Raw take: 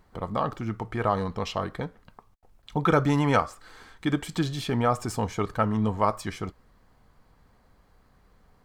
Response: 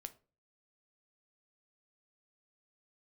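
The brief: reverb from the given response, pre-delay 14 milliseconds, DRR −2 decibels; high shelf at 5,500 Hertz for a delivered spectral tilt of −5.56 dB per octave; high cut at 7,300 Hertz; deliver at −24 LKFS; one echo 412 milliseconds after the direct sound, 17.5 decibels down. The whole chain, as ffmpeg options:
-filter_complex "[0:a]lowpass=7300,highshelf=frequency=5500:gain=7,aecho=1:1:412:0.133,asplit=2[link_01][link_02];[1:a]atrim=start_sample=2205,adelay=14[link_03];[link_02][link_03]afir=irnorm=-1:irlink=0,volume=7dB[link_04];[link_01][link_04]amix=inputs=2:normalize=0,volume=-1dB"

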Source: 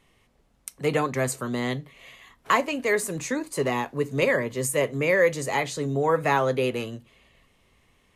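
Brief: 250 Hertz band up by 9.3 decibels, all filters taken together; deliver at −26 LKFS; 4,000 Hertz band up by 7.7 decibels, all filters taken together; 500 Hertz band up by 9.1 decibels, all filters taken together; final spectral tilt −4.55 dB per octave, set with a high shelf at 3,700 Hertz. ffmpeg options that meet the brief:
ffmpeg -i in.wav -af "equalizer=frequency=250:width_type=o:gain=8.5,equalizer=frequency=500:width_type=o:gain=8,highshelf=frequency=3700:gain=5,equalizer=frequency=4000:width_type=o:gain=7,volume=-8dB" out.wav

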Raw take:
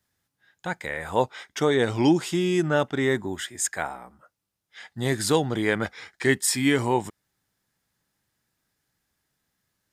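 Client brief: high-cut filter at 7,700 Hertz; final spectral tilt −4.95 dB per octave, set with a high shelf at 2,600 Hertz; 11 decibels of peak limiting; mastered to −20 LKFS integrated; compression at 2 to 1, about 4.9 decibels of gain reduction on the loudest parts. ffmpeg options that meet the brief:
ffmpeg -i in.wav -af "lowpass=7700,highshelf=frequency=2600:gain=-8,acompressor=threshold=-24dB:ratio=2,volume=14.5dB,alimiter=limit=-9dB:level=0:latency=1" out.wav

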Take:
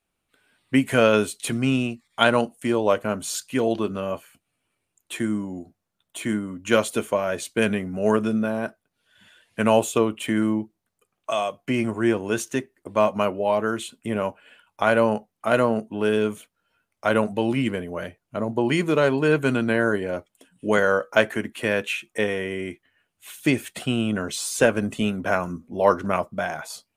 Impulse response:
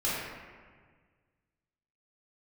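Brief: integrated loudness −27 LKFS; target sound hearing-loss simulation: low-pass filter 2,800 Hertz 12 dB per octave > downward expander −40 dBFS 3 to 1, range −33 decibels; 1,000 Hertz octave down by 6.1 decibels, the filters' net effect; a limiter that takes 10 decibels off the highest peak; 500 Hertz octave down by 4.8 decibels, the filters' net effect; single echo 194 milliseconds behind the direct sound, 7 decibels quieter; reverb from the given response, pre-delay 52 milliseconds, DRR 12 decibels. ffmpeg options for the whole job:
-filter_complex "[0:a]equalizer=frequency=500:width_type=o:gain=-4,equalizer=frequency=1000:width_type=o:gain=-7,alimiter=limit=-14.5dB:level=0:latency=1,aecho=1:1:194:0.447,asplit=2[link_01][link_02];[1:a]atrim=start_sample=2205,adelay=52[link_03];[link_02][link_03]afir=irnorm=-1:irlink=0,volume=-21.5dB[link_04];[link_01][link_04]amix=inputs=2:normalize=0,lowpass=2800,agate=range=-33dB:threshold=-40dB:ratio=3,volume=0.5dB"

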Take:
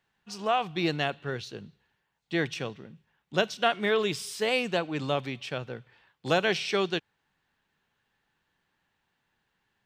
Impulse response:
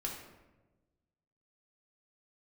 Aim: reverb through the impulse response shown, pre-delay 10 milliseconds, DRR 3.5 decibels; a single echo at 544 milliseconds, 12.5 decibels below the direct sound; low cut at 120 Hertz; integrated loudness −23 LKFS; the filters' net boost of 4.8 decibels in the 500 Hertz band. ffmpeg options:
-filter_complex "[0:a]highpass=120,equalizer=frequency=500:width_type=o:gain=6,aecho=1:1:544:0.237,asplit=2[link_01][link_02];[1:a]atrim=start_sample=2205,adelay=10[link_03];[link_02][link_03]afir=irnorm=-1:irlink=0,volume=-4.5dB[link_04];[link_01][link_04]amix=inputs=2:normalize=0,volume=2dB"

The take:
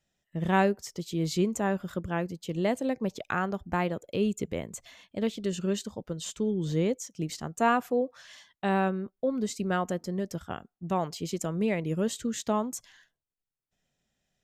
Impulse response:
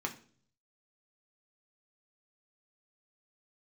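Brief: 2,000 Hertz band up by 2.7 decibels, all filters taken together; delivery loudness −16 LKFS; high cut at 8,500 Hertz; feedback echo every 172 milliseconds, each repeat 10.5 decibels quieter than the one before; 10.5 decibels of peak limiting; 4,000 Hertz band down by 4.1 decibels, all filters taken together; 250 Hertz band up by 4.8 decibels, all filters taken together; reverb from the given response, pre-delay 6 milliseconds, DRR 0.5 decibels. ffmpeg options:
-filter_complex "[0:a]lowpass=8500,equalizer=frequency=250:width_type=o:gain=6.5,equalizer=frequency=2000:width_type=o:gain=5,equalizer=frequency=4000:width_type=o:gain=-7.5,alimiter=limit=-19.5dB:level=0:latency=1,aecho=1:1:172|344|516:0.299|0.0896|0.0269,asplit=2[link_01][link_02];[1:a]atrim=start_sample=2205,adelay=6[link_03];[link_02][link_03]afir=irnorm=-1:irlink=0,volume=-3.5dB[link_04];[link_01][link_04]amix=inputs=2:normalize=0,volume=11dB"

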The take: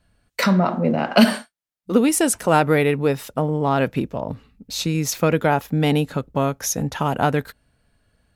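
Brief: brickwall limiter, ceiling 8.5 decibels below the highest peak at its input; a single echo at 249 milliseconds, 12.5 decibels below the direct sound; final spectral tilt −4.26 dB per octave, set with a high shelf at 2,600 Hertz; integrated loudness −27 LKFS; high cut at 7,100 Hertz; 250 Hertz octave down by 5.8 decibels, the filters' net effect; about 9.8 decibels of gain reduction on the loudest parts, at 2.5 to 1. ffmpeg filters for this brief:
ffmpeg -i in.wav -af "lowpass=7100,equalizer=frequency=250:width_type=o:gain=-8,highshelf=frequency=2600:gain=3.5,acompressor=threshold=-26dB:ratio=2.5,alimiter=limit=-18.5dB:level=0:latency=1,aecho=1:1:249:0.237,volume=2.5dB" out.wav

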